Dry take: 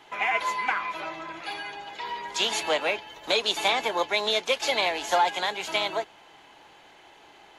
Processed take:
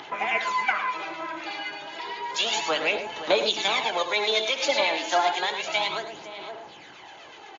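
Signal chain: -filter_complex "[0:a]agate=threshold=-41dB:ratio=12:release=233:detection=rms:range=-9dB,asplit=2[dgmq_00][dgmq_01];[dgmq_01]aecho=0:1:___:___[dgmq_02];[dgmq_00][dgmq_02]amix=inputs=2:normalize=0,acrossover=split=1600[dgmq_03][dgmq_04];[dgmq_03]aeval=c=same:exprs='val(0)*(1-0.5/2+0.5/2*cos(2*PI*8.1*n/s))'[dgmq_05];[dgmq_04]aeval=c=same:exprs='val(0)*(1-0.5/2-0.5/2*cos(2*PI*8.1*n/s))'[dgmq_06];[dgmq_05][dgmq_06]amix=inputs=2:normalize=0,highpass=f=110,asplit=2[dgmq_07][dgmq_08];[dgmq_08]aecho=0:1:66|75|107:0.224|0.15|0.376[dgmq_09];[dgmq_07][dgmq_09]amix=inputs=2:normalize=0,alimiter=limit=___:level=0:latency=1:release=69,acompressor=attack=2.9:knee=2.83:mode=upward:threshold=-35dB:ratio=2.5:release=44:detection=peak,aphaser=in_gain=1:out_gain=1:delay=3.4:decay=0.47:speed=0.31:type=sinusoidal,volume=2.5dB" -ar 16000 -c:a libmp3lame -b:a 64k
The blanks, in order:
515, 0.0794, -15dB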